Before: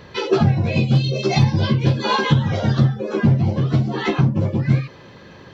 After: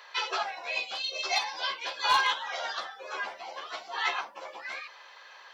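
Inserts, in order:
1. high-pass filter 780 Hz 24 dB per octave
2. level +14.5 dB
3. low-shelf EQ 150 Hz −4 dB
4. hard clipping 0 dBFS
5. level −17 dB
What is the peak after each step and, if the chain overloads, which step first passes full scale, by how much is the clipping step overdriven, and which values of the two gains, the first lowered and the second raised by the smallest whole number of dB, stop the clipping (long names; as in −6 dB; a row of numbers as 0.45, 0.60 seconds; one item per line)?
−10.0, +4.5, +4.5, 0.0, −17.0 dBFS
step 2, 4.5 dB
step 2 +9.5 dB, step 5 −12 dB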